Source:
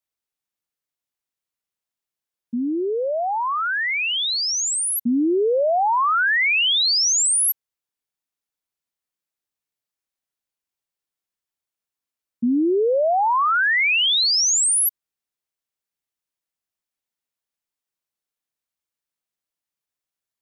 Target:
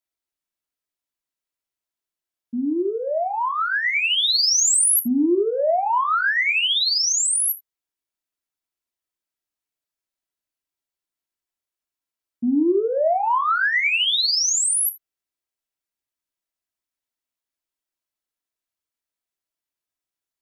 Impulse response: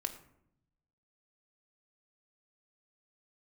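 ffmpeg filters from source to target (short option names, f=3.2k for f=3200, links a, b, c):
-filter_complex "[0:a]asettb=1/sr,asplit=3[a][b][c];[a]atrim=end=2.764[d];[b]atrim=start=2.76:end=5.32,asetpts=PTS-STARTPTS,afade=t=in:d=0.004:c=qsin,afade=t=out:st=2.556:d=0.004:c=qsin,highshelf=f=3k:g=8.5[e];[c]atrim=start=5.316[f];[d][e]acrossfade=d=0.004:c1=hsin:c2=qsin[g];[g][f]acrossfade=d=0.004:c1=qsin:c2=hsin,acontrast=40[h];[1:a]atrim=start_sample=2205,atrim=end_sample=3969[i];[h][i]afir=irnorm=-1:irlink=0,volume=-7dB"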